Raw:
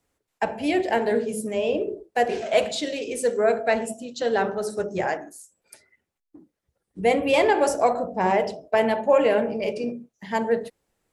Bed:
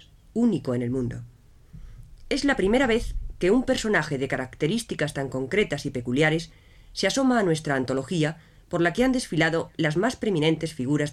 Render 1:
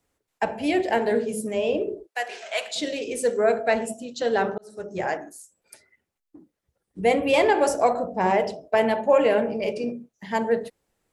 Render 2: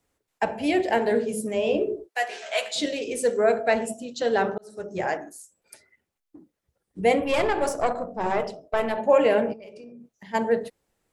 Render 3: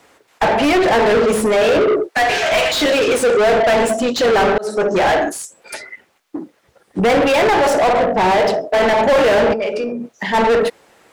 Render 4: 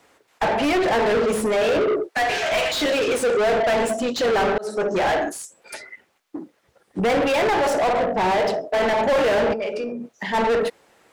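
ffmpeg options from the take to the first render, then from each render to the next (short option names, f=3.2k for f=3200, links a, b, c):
-filter_complex "[0:a]asplit=3[a][b][c];[a]afade=t=out:st=2.06:d=0.02[d];[b]highpass=1.1k,afade=t=in:st=2.06:d=0.02,afade=t=out:st=2.75:d=0.02[e];[c]afade=t=in:st=2.75:d=0.02[f];[d][e][f]amix=inputs=3:normalize=0,asplit=2[g][h];[g]atrim=end=4.58,asetpts=PTS-STARTPTS,afade=t=out:st=4.576:d=0.004:c=hsin[i];[h]atrim=start=4.58,asetpts=PTS-STARTPTS,afade=t=in:d=0.57[j];[i][j]concat=n=2:v=0:a=1"
-filter_complex "[0:a]asettb=1/sr,asplit=3[a][b][c];[a]atrim=end=1.654[d];[b]atrim=start=1.65:end=2.86,asetpts=PTS-STARTPTS,afade=t=in:d=0.004:c=qsin,afade=t=out:st=1.206:d=0.004:c=qsin,asplit=2[e][f];[f]adelay=14,volume=-5dB[g];[e][g]amix=inputs=2:normalize=0,atrim=end_sample=53361[h];[c]atrim=start=2.856[i];[d][h]acrossfade=d=0.004:c1=hsin:c2=qsin[j];[j][i]acrossfade=d=0.004:c1=qsin:c2=hsin,asettb=1/sr,asplit=3[k][l][m];[k]atrim=end=7.244[n];[l]atrim=start=7.24:end=8.98,asetpts=PTS-STARTPTS,afade=t=in:d=0.004:c=qsin,afade=t=out:st=1.736:d=0.004:c=qsin,aeval=exprs='(tanh(5.01*val(0)+0.7)-tanh(0.7))/5.01':c=same[o];[m]atrim=start=8.976[p];[n][o]acrossfade=d=0.004:c1=hsin:c2=qsin[q];[q][p]acrossfade=d=0.004:c1=qsin:c2=hsin,asplit=3[r][s][t];[r]afade=t=out:st=9.52:d=0.02[u];[s]acompressor=threshold=-41dB:ratio=8:attack=3.2:release=140:knee=1:detection=peak,afade=t=in:st=9.52:d=0.02,afade=t=out:st=10.33:d=0.02[v];[t]afade=t=in:st=10.33:d=0.02[w];[u][v][w]amix=inputs=3:normalize=0"
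-filter_complex "[0:a]asplit=2[a][b];[b]volume=23dB,asoftclip=hard,volume=-23dB,volume=-10dB[c];[a][c]amix=inputs=2:normalize=0,asplit=2[d][e];[e]highpass=f=720:p=1,volume=34dB,asoftclip=type=tanh:threshold=-6.5dB[f];[d][f]amix=inputs=2:normalize=0,lowpass=f=2.3k:p=1,volume=-6dB"
-af "volume=-6dB"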